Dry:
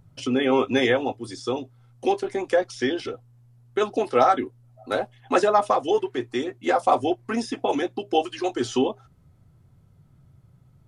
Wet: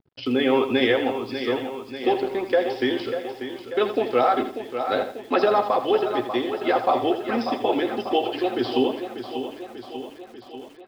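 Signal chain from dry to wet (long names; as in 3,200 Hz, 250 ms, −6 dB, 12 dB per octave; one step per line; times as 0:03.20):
dead-zone distortion −49.5 dBFS
parametric band 1,200 Hz −4.5 dB 2 octaves
downsampling to 11,025 Hz
low-shelf EQ 190 Hz −8 dB
repeating echo 591 ms, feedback 60%, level −10 dB
boost into a limiter +13 dB
feedback echo at a low word length 82 ms, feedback 35%, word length 6 bits, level −10 dB
level −9 dB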